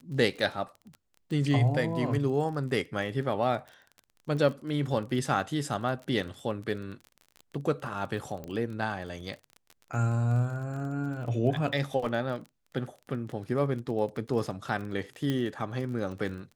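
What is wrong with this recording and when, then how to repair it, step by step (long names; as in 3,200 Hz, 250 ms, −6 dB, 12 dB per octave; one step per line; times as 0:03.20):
surface crackle 29 per second −37 dBFS
0:08.44: click −26 dBFS
0:15.30: click −18 dBFS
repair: click removal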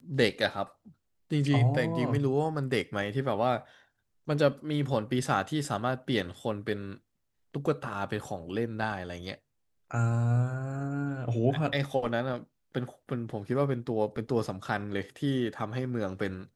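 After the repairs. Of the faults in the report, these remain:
none of them is left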